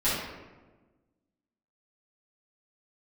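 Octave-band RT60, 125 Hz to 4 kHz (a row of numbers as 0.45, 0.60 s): 1.6, 1.7, 1.4, 1.1, 0.95, 0.70 s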